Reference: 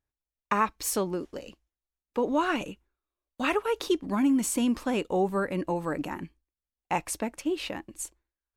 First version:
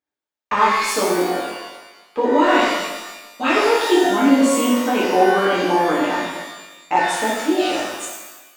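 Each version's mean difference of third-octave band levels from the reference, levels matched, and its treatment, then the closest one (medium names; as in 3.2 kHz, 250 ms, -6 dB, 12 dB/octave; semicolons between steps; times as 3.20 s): 11.0 dB: high-pass 280 Hz 12 dB/octave; waveshaping leveller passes 1; peaking EQ 13 kHz -14 dB 0.98 oct; pitch-shifted reverb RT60 1.1 s, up +12 st, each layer -8 dB, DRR -7.5 dB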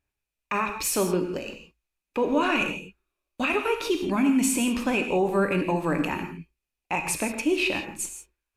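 5.5 dB: peaking EQ 2.5 kHz +14 dB 0.21 oct; peak limiter -21 dBFS, peak gain reduction 11 dB; gated-style reverb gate 190 ms flat, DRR 5 dB; resampled via 32 kHz; trim +4.5 dB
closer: second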